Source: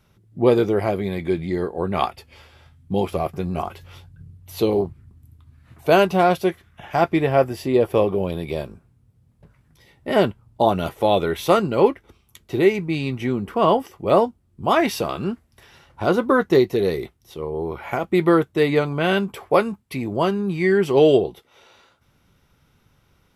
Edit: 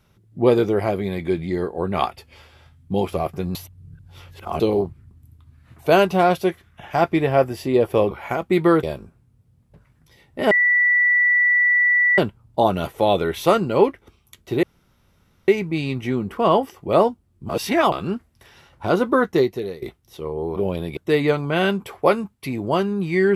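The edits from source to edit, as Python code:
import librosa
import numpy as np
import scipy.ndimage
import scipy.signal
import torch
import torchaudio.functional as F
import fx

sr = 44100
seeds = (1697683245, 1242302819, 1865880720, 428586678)

y = fx.edit(x, sr, fx.reverse_span(start_s=3.55, length_s=1.05),
    fx.swap(start_s=8.11, length_s=0.41, other_s=17.73, other_length_s=0.72),
    fx.insert_tone(at_s=10.2, length_s=1.67, hz=1960.0, db=-13.5),
    fx.insert_room_tone(at_s=12.65, length_s=0.85),
    fx.reverse_span(start_s=14.66, length_s=0.43),
    fx.fade_out_to(start_s=16.19, length_s=0.8, curve='qsin', floor_db=-19.0), tone=tone)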